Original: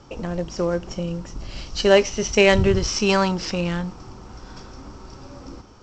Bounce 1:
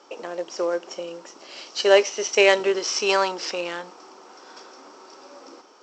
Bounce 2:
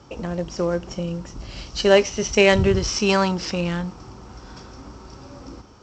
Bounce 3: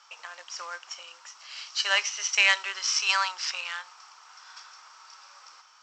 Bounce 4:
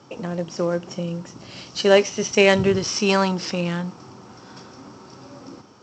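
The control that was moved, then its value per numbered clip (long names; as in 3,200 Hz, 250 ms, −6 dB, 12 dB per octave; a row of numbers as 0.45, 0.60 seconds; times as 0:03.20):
high-pass filter, corner frequency: 360, 40, 1,100, 120 Hertz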